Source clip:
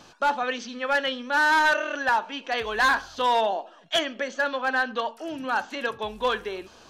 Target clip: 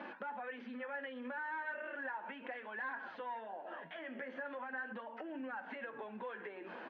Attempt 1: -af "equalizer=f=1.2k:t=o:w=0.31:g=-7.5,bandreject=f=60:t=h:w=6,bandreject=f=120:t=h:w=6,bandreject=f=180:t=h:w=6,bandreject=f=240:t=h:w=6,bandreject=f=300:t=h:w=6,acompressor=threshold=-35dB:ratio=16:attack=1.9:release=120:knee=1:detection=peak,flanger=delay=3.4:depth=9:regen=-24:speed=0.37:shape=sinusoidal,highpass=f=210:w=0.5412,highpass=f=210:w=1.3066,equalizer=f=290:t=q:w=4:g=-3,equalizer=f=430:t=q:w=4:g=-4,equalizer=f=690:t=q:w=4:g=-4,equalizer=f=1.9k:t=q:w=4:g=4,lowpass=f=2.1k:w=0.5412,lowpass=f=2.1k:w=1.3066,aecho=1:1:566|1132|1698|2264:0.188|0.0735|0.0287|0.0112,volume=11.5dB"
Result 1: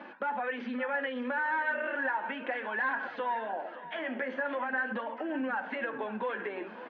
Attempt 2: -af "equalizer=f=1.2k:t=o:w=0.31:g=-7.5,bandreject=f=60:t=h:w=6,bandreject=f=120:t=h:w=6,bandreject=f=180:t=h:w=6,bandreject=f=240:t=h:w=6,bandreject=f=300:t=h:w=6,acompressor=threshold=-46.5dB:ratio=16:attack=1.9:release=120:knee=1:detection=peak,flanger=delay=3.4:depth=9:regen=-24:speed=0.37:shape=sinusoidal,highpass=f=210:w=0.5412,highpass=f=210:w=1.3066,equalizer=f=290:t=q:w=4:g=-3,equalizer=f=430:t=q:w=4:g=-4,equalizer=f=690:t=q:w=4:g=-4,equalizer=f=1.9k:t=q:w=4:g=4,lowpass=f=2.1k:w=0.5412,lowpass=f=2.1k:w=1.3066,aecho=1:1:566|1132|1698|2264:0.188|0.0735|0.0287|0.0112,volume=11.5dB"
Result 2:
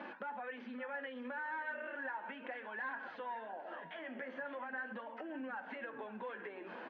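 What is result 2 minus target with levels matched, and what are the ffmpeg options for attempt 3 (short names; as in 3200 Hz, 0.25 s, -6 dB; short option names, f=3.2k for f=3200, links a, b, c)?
echo-to-direct +8.5 dB
-af "equalizer=f=1.2k:t=o:w=0.31:g=-7.5,bandreject=f=60:t=h:w=6,bandreject=f=120:t=h:w=6,bandreject=f=180:t=h:w=6,bandreject=f=240:t=h:w=6,bandreject=f=300:t=h:w=6,acompressor=threshold=-46.5dB:ratio=16:attack=1.9:release=120:knee=1:detection=peak,flanger=delay=3.4:depth=9:regen=-24:speed=0.37:shape=sinusoidal,highpass=f=210:w=0.5412,highpass=f=210:w=1.3066,equalizer=f=290:t=q:w=4:g=-3,equalizer=f=430:t=q:w=4:g=-4,equalizer=f=690:t=q:w=4:g=-4,equalizer=f=1.9k:t=q:w=4:g=4,lowpass=f=2.1k:w=0.5412,lowpass=f=2.1k:w=1.3066,aecho=1:1:566|1132|1698:0.0708|0.0276|0.0108,volume=11.5dB"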